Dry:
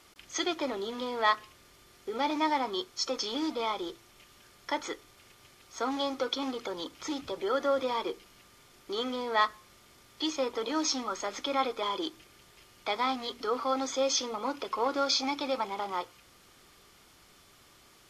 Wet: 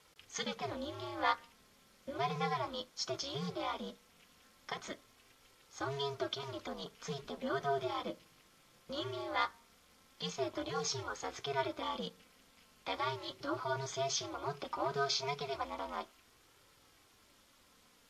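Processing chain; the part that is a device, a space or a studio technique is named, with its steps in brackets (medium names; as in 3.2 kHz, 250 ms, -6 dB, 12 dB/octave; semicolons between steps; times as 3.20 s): alien voice (ring modulator 140 Hz; flange 0.18 Hz, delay 2.1 ms, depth 4.4 ms, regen -48%)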